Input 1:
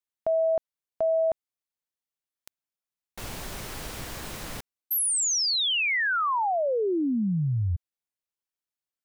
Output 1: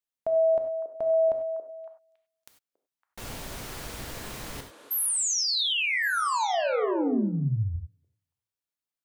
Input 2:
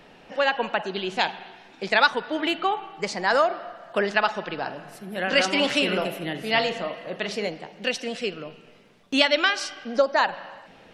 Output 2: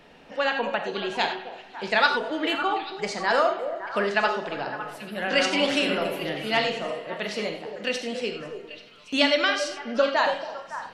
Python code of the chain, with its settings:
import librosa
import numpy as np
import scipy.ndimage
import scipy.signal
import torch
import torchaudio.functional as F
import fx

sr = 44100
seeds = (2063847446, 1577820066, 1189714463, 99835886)

y = fx.echo_stepped(x, sr, ms=279, hz=450.0, octaves=1.4, feedback_pct=70, wet_db=-6)
y = fx.rev_gated(y, sr, seeds[0], gate_ms=120, shape='flat', drr_db=5.0)
y = F.gain(torch.from_numpy(y), -2.5).numpy()